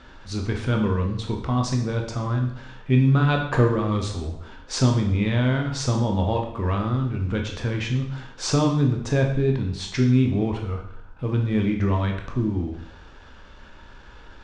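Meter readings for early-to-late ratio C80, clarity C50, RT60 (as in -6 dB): 9.5 dB, 6.5 dB, 0.70 s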